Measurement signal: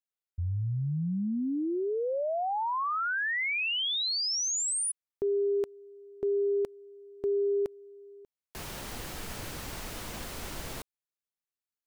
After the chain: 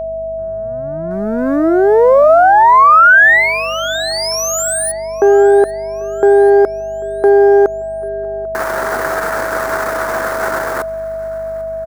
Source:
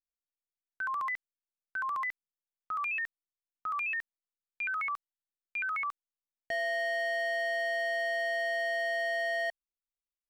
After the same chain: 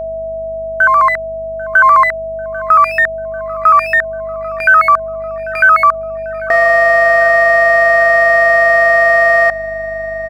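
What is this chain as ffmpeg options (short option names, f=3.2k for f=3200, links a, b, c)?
-filter_complex "[0:a]aeval=exprs='if(lt(val(0),0),0.447*val(0),val(0))':c=same,highpass=410,asplit=2[a][b];[b]aeval=exprs='val(0)*gte(abs(val(0)),0.00841)':c=same,volume=-9.5dB[c];[a][c]amix=inputs=2:normalize=0,dynaudnorm=f=610:g=3:m=10.5dB,aeval=exprs='val(0)+0.00355*(sin(2*PI*50*n/s)+sin(2*PI*2*50*n/s)/2+sin(2*PI*3*50*n/s)/3+sin(2*PI*4*50*n/s)/4+sin(2*PI*5*50*n/s)/5)':c=same,highshelf=f=2.1k:t=q:w=3:g=-11,aeval=exprs='val(0)+0.0251*sin(2*PI*650*n/s)':c=same,aecho=1:1:793|1586|2379|3172:0.0794|0.0413|0.0215|0.0112,alimiter=level_in=14dB:limit=-1dB:release=50:level=0:latency=1,volume=-1dB"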